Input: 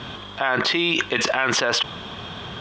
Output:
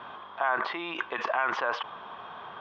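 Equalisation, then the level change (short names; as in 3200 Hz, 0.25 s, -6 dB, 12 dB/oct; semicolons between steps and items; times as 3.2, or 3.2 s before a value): band-pass 1000 Hz, Q 1.9; air absorption 120 m; 0.0 dB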